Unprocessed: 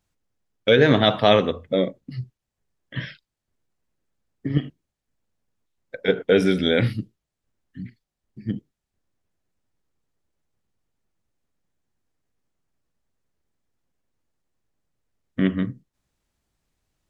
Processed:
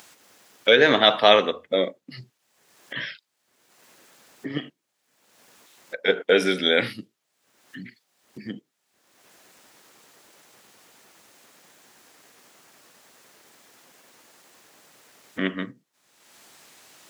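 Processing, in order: HPF 220 Hz 12 dB/oct; low shelf 420 Hz -12 dB; upward compressor, threshold -36 dBFS; gain +4.5 dB

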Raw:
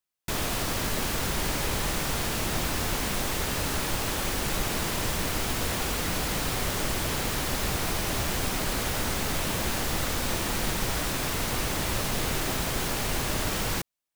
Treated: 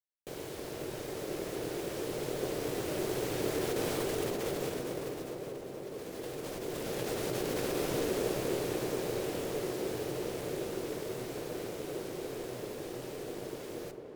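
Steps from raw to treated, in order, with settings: Doppler pass-by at 5.67, 17 m/s, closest 4 m; ring modulator 370 Hz; negative-ratio compressor -50 dBFS, ratio -1; graphic EQ 125/500/1000 Hz +7/+10/-3 dB; on a send: tape echo 0.447 s, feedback 87%, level -6 dB, low-pass 1200 Hz; on the sum: shoebox room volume 950 m³, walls mixed, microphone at 0.45 m; gain +7.5 dB

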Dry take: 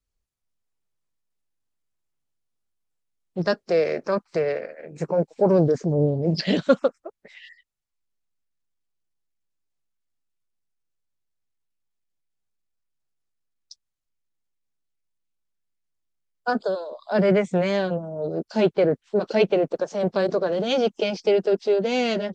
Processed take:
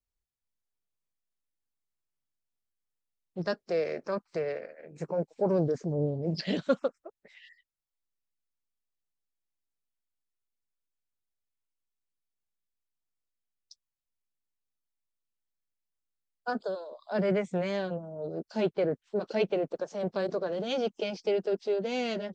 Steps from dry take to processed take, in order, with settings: gain -8.5 dB

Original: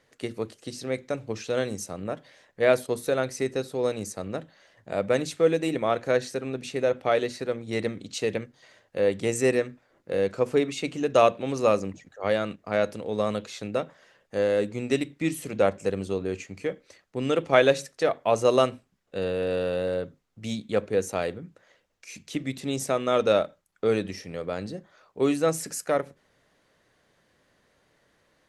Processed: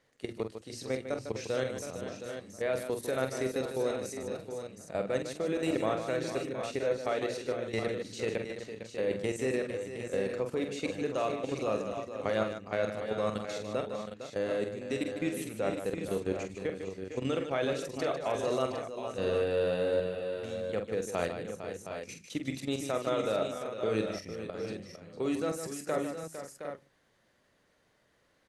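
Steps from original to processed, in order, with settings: level quantiser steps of 14 dB; tapped delay 46/151/455/491/717/759 ms -7.5/-9/-10.5/-17/-10/-9.5 dB; gain -2.5 dB

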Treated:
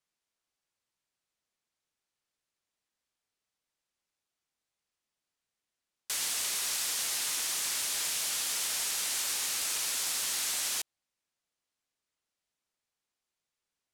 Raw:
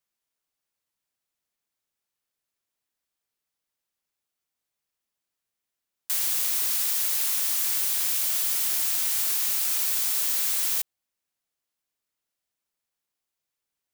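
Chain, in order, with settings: LPF 8900 Hz 12 dB/oct

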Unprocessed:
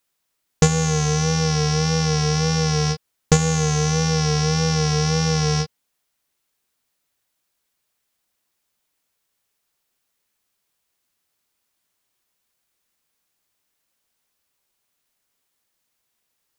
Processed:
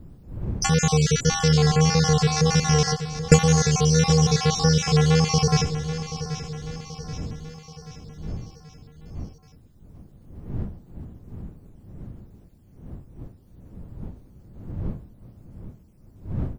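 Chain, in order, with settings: random spectral dropouts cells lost 49%; wind noise 140 Hz -40 dBFS; feedback echo 0.781 s, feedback 52%, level -12 dB; gain +2.5 dB

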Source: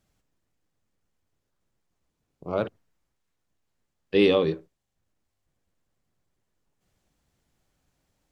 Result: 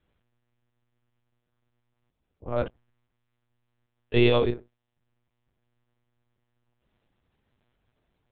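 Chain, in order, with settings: monotone LPC vocoder at 8 kHz 120 Hz

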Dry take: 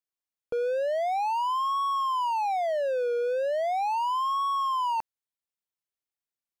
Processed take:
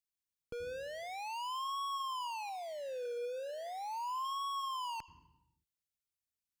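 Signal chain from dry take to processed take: on a send at -15.5 dB: high shelf 4600 Hz -7 dB + reverb, pre-delay 77 ms; 2.49–4.25 on the sum: sample leveller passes 1; passive tone stack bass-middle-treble 6-0-2; gain +13.5 dB

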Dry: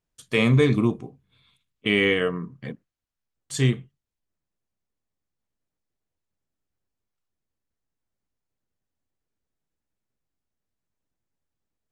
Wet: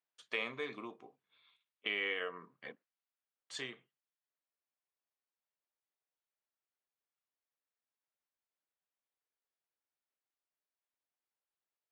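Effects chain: compressor 2.5:1, threshold -27 dBFS, peak gain reduction 9 dB; BPF 640–3900 Hz; gain -5 dB

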